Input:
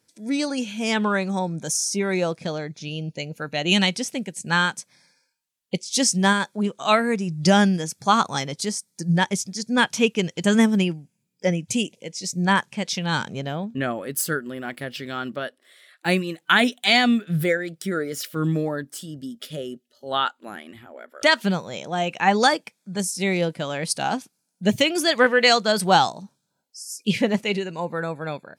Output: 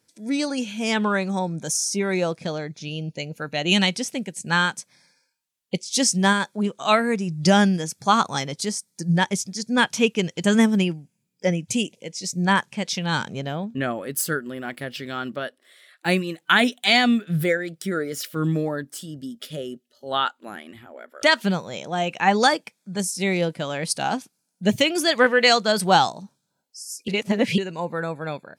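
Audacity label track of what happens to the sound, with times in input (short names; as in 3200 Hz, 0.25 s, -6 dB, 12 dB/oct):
27.080000	27.580000	reverse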